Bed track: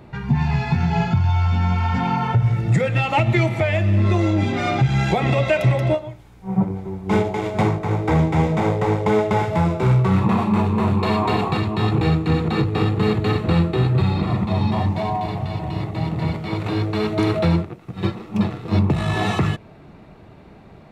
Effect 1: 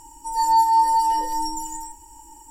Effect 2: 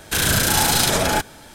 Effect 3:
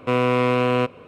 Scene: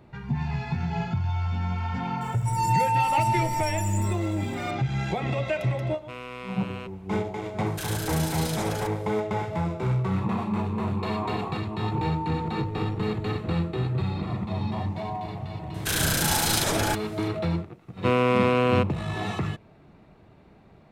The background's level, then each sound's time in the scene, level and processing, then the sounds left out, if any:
bed track -9 dB
2.21 add 1 -10 dB + sample leveller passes 2
6.01 add 3 -17 dB + tilt shelf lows -6 dB, about 1100 Hz
7.66 add 2 -10.5 dB + compressor 3:1, threshold -21 dBFS
11.46 add 1 -15.5 dB + air absorption 490 m
15.74 add 2 -6.5 dB
17.97 add 3 -2 dB

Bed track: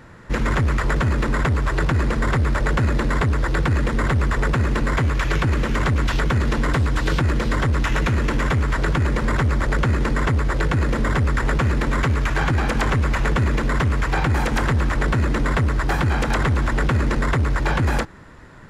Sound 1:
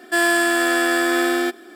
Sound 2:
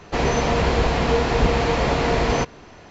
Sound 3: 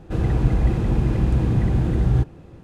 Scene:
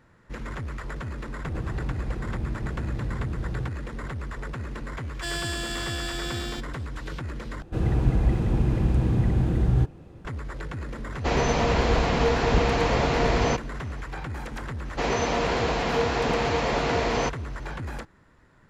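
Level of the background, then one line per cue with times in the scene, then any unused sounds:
bed track -14.5 dB
1.45 add 3 -13.5 dB + three-band squash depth 100%
5.1 add 1 -17 dB + band shelf 4500 Hz +12 dB
7.62 replace with 3 -3 dB
11.12 add 2 -3 dB
14.85 add 2 -3.5 dB + HPF 220 Hz 6 dB/oct

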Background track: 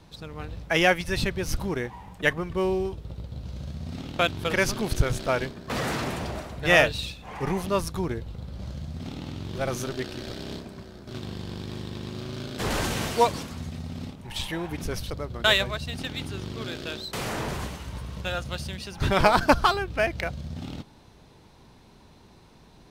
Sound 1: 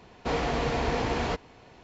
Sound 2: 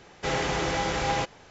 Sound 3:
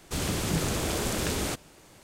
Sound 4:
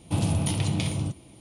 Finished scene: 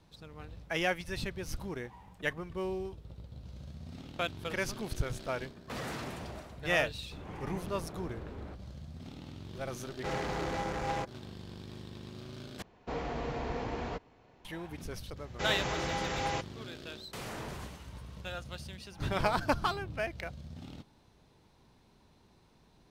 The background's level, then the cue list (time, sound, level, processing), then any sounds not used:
background track -10.5 dB
7 add 3 -14.5 dB + LPF 1400 Hz
9.8 add 2 -6.5 dB + Wiener smoothing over 15 samples
12.62 replace with 1 -8 dB + high shelf 2200 Hz -7 dB
15.16 add 2 -7 dB
18.88 add 4 -17.5 dB + LPF 1500 Hz

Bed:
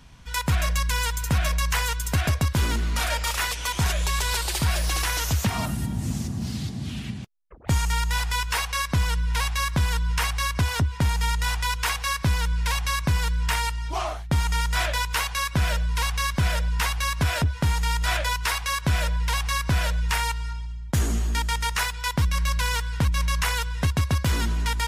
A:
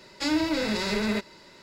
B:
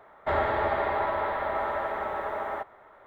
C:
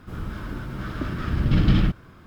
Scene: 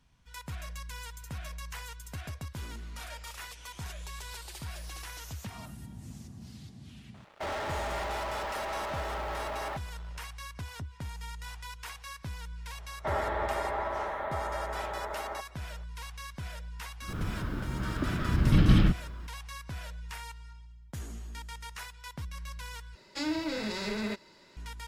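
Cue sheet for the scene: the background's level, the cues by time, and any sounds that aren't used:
bed -17.5 dB
7.14 add B -17.5 dB + sample leveller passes 5
12.78 add B -5.5 dB
17.01 add C -2.5 dB
22.95 replace with A -7 dB

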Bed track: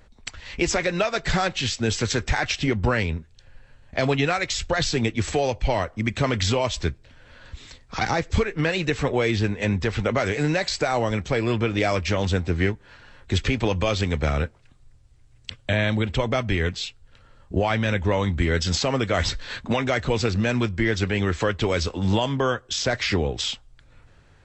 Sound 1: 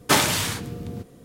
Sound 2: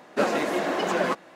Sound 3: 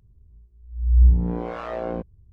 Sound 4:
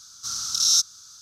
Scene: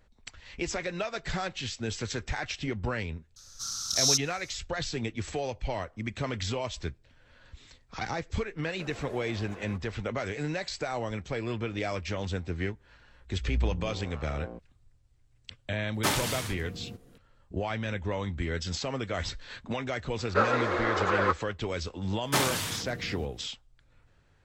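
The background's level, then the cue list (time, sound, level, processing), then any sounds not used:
bed track -10 dB
3.36 add 4 -5.5 dB
8.63 add 2 -10 dB + compressor, threshold -34 dBFS
12.57 add 3 -14 dB
15.94 add 1 -9 dB
20.18 add 2 -2 dB + speaker cabinet 420–5700 Hz, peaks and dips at 480 Hz +6 dB, 680 Hz -8 dB, 1300 Hz +10 dB, 2900 Hz -6 dB, 5500 Hz -5 dB
22.23 add 1 -8 dB

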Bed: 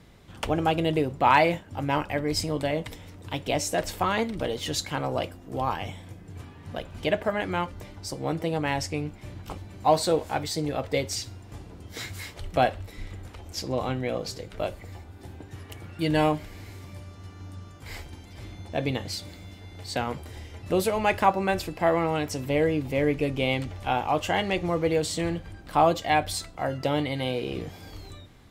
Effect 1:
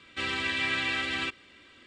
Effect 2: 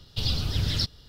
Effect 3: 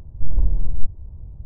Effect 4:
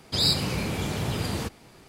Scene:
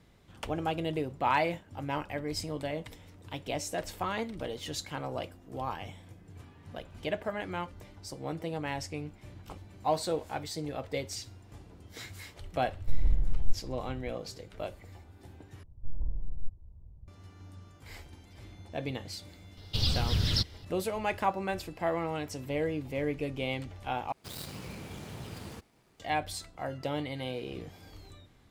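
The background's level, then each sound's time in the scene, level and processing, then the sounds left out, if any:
bed -8 dB
12.67 add 3 -7.5 dB
15.63 replace with 3 -15 dB
19.57 add 2 -1.5 dB
24.12 replace with 4 -14 dB + switching dead time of 0.081 ms
not used: 1

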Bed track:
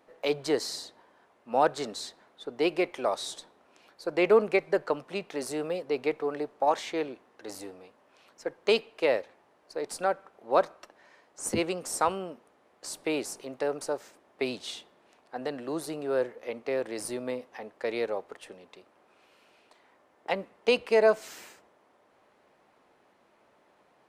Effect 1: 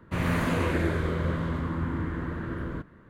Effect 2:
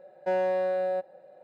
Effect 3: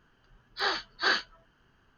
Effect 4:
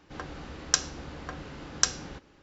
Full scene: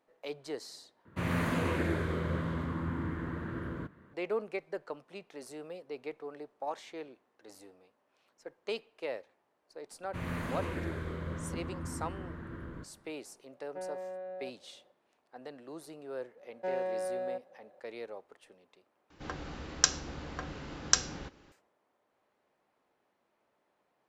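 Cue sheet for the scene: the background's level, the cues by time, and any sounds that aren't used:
bed track -12.5 dB
1.05 replace with 1 -4.5 dB + HPF 75 Hz
10.02 add 1 -10.5 dB
13.49 add 2 -13 dB + air absorption 390 m
16.37 add 2 -8 dB
19.1 replace with 4 -1 dB
not used: 3

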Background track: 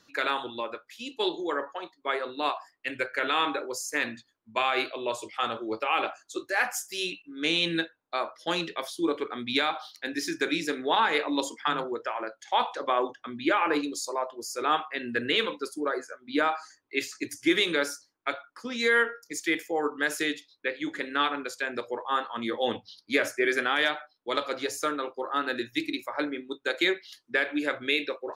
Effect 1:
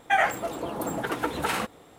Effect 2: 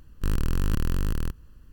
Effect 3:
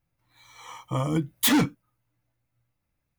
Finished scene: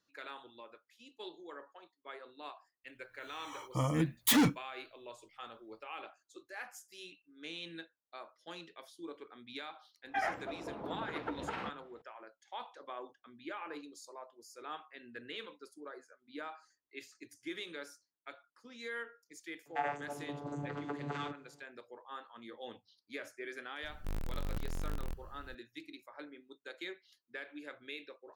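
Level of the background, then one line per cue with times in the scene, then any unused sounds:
background track -19 dB
2.84 add 3 -5.5 dB
10.04 add 1 -11 dB + air absorption 260 m
19.65 add 1 -11.5 dB + vocoder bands 16, saw 144 Hz
23.83 add 2 -3 dB + soft clip -30.5 dBFS

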